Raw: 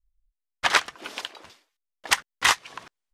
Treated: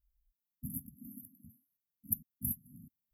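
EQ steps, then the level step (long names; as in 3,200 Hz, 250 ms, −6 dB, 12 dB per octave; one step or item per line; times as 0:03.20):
high-pass filter 130 Hz 6 dB per octave
linear-phase brick-wall band-stop 270–11,000 Hz
+8.0 dB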